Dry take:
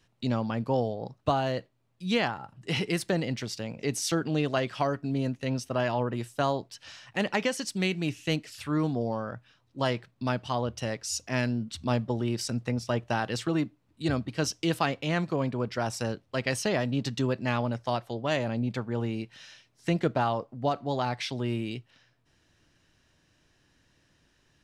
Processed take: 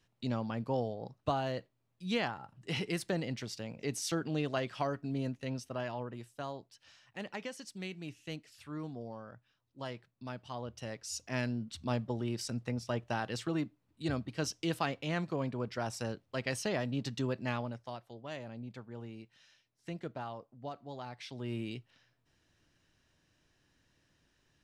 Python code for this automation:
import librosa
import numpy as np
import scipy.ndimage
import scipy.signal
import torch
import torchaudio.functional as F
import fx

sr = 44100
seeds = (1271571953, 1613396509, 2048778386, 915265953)

y = fx.gain(x, sr, db=fx.line((5.28, -6.5), (6.37, -14.0), (10.3, -14.0), (11.35, -6.5), (17.49, -6.5), (17.96, -15.0), (21.15, -15.0), (21.61, -6.0)))